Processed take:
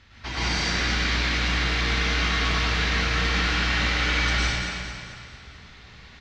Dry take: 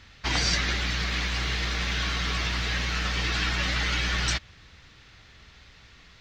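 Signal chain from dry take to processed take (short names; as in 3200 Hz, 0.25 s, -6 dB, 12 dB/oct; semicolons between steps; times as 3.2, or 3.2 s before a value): on a send: feedback echo 0.223 s, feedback 50%, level -11 dB; on the sum: limiter -19 dBFS, peak gain reduction 7.5 dB; high shelf 7800 Hz -9.5 dB; plate-style reverb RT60 1.8 s, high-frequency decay 0.8×, pre-delay 90 ms, DRR -8.5 dB; gain -3 dB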